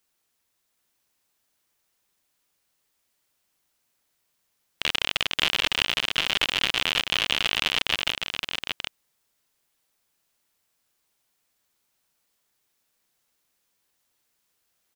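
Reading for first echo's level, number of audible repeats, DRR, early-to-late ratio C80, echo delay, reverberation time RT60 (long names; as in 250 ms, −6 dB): −5.0 dB, 1, no reverb audible, no reverb audible, 770 ms, no reverb audible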